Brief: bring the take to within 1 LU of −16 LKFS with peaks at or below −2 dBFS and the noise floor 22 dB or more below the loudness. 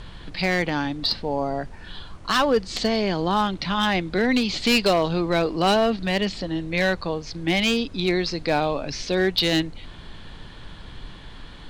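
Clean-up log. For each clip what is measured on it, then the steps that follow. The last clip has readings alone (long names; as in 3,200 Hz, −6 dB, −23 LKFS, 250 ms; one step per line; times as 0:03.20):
share of clipped samples 0.8%; peaks flattened at −13.0 dBFS; background noise floor −41 dBFS; target noise floor −45 dBFS; integrated loudness −23.0 LKFS; sample peak −13.0 dBFS; target loudness −16.0 LKFS
→ clipped peaks rebuilt −13 dBFS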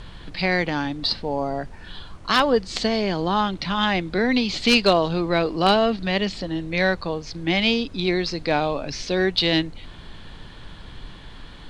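share of clipped samples 0.0%; background noise floor −41 dBFS; target noise floor −44 dBFS
→ noise reduction from a noise print 6 dB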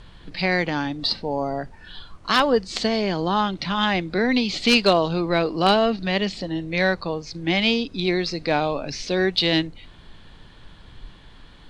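background noise floor −47 dBFS; integrated loudness −22.0 LKFS; sample peak −4.0 dBFS; target loudness −16.0 LKFS
→ level +6 dB
brickwall limiter −2 dBFS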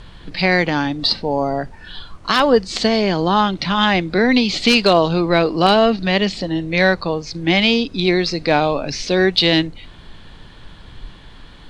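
integrated loudness −16.5 LKFS; sample peak −2.0 dBFS; background noise floor −41 dBFS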